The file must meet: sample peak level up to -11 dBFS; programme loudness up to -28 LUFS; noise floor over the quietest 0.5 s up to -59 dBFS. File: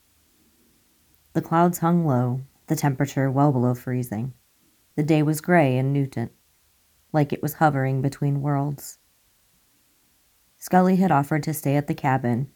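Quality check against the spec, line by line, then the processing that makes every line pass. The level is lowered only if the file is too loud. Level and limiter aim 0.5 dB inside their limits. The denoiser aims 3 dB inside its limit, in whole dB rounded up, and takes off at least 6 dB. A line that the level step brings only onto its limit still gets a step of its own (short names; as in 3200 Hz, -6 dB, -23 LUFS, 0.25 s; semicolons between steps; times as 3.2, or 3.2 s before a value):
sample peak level -5.5 dBFS: fail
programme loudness -22.5 LUFS: fail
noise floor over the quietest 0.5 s -63 dBFS: OK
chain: gain -6 dB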